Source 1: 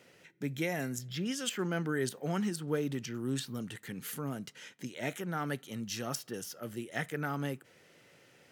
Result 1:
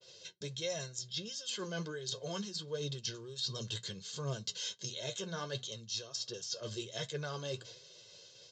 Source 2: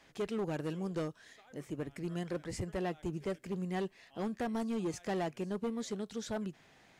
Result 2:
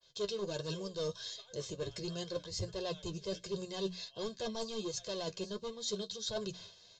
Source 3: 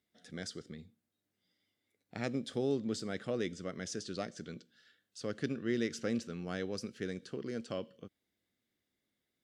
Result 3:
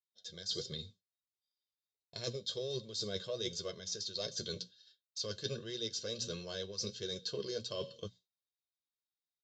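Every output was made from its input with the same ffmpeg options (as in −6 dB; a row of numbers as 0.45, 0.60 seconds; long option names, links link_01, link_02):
-af "bandreject=frequency=60:width_type=h:width=6,bandreject=frequency=120:width_type=h:width=6,bandreject=frequency=180:width_type=h:width=6,bandreject=frequency=240:width_type=h:width=6,agate=range=-33dB:threshold=-54dB:ratio=3:detection=peak,highshelf=frequency=2900:width_type=q:width=3:gain=11,aecho=1:1:1.9:0.93,areverse,acompressor=threshold=-38dB:ratio=20,areverse,acrusher=bits=7:mode=log:mix=0:aa=0.000001,flanger=delay=7.1:depth=3.9:regen=39:speed=1.4:shape=triangular,aresample=16000,aresample=44100,adynamicequalizer=threshold=0.00112:dfrequency=4000:dqfactor=0.7:tfrequency=4000:tqfactor=0.7:attack=5:release=100:ratio=0.375:range=1.5:mode=cutabove:tftype=highshelf,volume=7.5dB"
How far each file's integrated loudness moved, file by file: −3.0, −1.5, −1.5 LU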